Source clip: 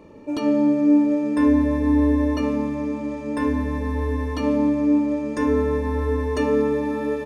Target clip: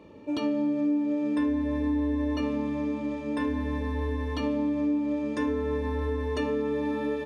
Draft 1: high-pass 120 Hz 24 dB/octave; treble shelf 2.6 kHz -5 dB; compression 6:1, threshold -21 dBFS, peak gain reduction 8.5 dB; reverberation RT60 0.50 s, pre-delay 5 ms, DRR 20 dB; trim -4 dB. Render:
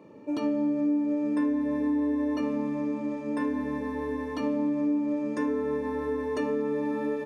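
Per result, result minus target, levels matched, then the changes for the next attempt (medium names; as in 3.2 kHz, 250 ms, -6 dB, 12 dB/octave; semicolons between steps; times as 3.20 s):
125 Hz band -9.5 dB; 4 kHz band -7.0 dB
change: high-pass 48 Hz 24 dB/octave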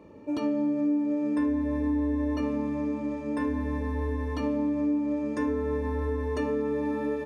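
4 kHz band -7.0 dB
add after compression: peaking EQ 3.4 kHz +9.5 dB 0.84 oct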